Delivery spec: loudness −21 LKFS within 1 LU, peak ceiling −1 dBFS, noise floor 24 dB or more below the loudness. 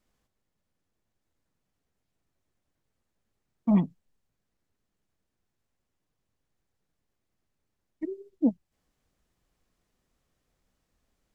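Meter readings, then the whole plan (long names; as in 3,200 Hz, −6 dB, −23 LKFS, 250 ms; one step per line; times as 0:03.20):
integrated loudness −29.0 LKFS; sample peak −13.0 dBFS; target loudness −21.0 LKFS
→ level +8 dB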